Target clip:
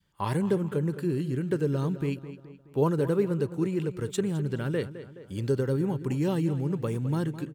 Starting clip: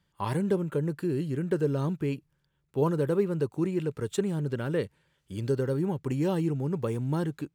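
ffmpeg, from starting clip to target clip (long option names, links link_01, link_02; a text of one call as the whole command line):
ffmpeg -i in.wav -filter_complex "[0:a]asplit=2[link_01][link_02];[link_02]adelay=211,lowpass=frequency=4500:poles=1,volume=-13dB,asplit=2[link_03][link_04];[link_04]adelay=211,lowpass=frequency=4500:poles=1,volume=0.44,asplit=2[link_05][link_06];[link_06]adelay=211,lowpass=frequency=4500:poles=1,volume=0.44,asplit=2[link_07][link_08];[link_08]adelay=211,lowpass=frequency=4500:poles=1,volume=0.44[link_09];[link_01][link_03][link_05][link_07][link_09]amix=inputs=5:normalize=0,adynamicequalizer=threshold=0.00891:dfrequency=670:dqfactor=0.74:tfrequency=670:tqfactor=0.74:attack=5:release=100:ratio=0.375:range=2:mode=cutabove:tftype=bell,volume=1.5dB" out.wav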